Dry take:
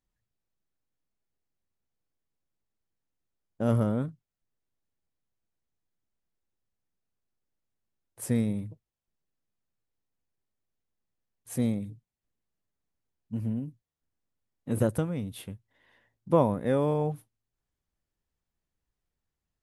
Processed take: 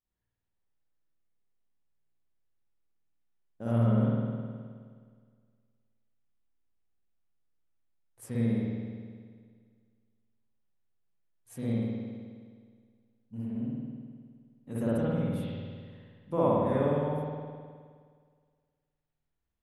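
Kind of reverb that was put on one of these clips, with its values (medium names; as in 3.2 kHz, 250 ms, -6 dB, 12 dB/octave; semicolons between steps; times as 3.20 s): spring tank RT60 1.9 s, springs 52 ms, chirp 25 ms, DRR -9.5 dB; trim -11 dB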